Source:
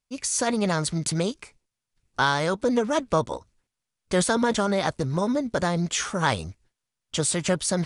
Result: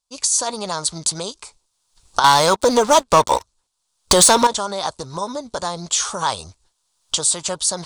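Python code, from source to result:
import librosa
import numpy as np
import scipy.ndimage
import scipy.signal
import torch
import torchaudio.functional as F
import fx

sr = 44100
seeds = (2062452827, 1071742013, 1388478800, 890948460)

y = fx.recorder_agc(x, sr, target_db=-14.5, rise_db_per_s=23.0, max_gain_db=30)
y = fx.graphic_eq(y, sr, hz=(125, 250, 1000, 2000, 4000, 8000), db=(-7, -6, 10, -9, 9, 10))
y = fx.leveller(y, sr, passes=3, at=(2.24, 4.47))
y = y * 10.0 ** (-3.0 / 20.0)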